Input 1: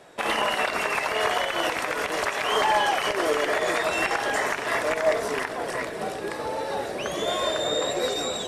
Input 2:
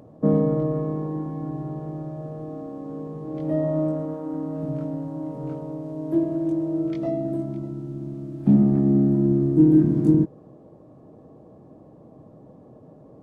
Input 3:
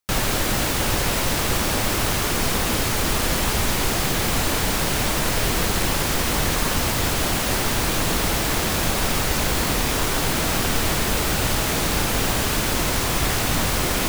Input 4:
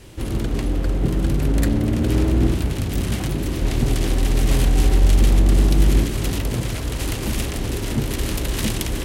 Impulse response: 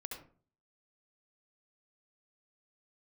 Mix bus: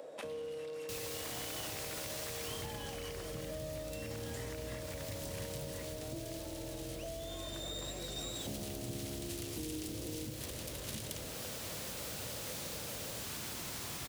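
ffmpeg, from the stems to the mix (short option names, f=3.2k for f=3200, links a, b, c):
-filter_complex "[0:a]volume=-8.5dB[a];[1:a]highpass=f=520:t=q:w=4.9,volume=-3dB,asplit=2[b][c];[c]volume=-11.5dB[d];[2:a]adelay=800,volume=-15.5dB[e];[3:a]dynaudnorm=f=240:g=3:m=11.5dB,adelay=2300,volume=-12.5dB[f];[e][f]amix=inputs=2:normalize=0,acompressor=threshold=-34dB:ratio=6,volume=0dB[g];[a][b]amix=inputs=2:normalize=0,aeval=exprs='clip(val(0),-1,0.1)':c=same,acompressor=threshold=-33dB:ratio=6,volume=0dB[h];[4:a]atrim=start_sample=2205[i];[d][i]afir=irnorm=-1:irlink=0[j];[g][h][j]amix=inputs=3:normalize=0,highpass=110,acrossover=split=140|3000[k][l][m];[l]acompressor=threshold=-48dB:ratio=3[n];[k][n][m]amix=inputs=3:normalize=0"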